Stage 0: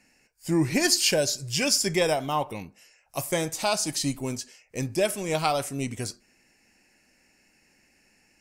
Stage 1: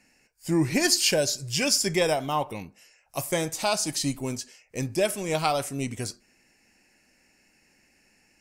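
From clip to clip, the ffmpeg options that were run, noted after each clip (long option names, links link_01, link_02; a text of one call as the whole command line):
ffmpeg -i in.wav -af anull out.wav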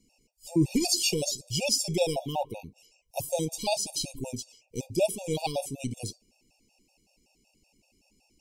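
ffmpeg -i in.wav -af "asuperstop=centerf=1500:order=8:qfactor=0.88,lowshelf=frequency=61:gain=9.5,afftfilt=real='re*gt(sin(2*PI*5.3*pts/sr)*(1-2*mod(floor(b*sr/1024/480),2)),0)':imag='im*gt(sin(2*PI*5.3*pts/sr)*(1-2*mod(floor(b*sr/1024/480),2)),0)':win_size=1024:overlap=0.75" out.wav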